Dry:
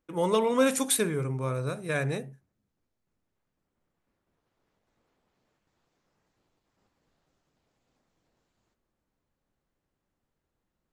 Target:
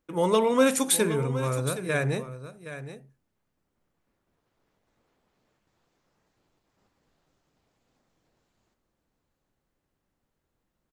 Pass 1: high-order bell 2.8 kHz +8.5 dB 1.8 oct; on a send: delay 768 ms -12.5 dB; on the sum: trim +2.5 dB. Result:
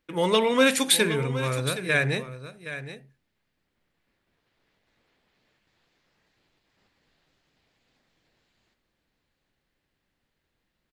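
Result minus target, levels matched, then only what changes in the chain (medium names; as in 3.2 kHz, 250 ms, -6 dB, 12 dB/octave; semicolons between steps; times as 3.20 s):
2 kHz band +5.5 dB
remove: high-order bell 2.8 kHz +8.5 dB 1.8 oct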